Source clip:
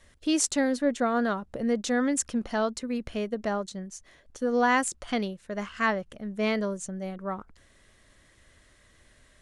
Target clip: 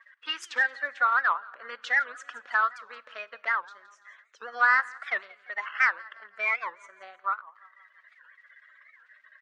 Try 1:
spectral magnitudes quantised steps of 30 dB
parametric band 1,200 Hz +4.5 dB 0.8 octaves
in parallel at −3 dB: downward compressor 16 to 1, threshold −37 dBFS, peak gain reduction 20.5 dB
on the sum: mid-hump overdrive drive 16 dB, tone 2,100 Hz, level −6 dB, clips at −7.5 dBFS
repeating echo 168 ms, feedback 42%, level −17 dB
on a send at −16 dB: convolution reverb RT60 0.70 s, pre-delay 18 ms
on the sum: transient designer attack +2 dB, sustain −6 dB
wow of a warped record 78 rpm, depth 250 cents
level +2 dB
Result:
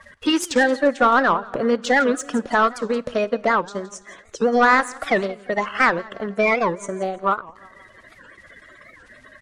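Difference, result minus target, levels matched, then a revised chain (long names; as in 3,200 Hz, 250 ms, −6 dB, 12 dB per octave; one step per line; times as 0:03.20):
2,000 Hz band −3.5 dB
spectral magnitudes quantised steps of 30 dB
four-pole ladder band-pass 1,900 Hz, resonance 35%
parametric band 1,200 Hz +4.5 dB 0.8 octaves
in parallel at −3 dB: downward compressor 16 to 1, threshold −37 dBFS, peak gain reduction 10.5 dB
on the sum: mid-hump overdrive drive 16 dB, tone 2,100 Hz, level −6 dB, clips at −7.5 dBFS
repeating echo 168 ms, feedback 42%, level −17 dB
on a send at −16 dB: convolution reverb RT60 0.70 s, pre-delay 18 ms
on the sum: transient designer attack +2 dB, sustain −6 dB
wow of a warped record 78 rpm, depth 250 cents
level +2 dB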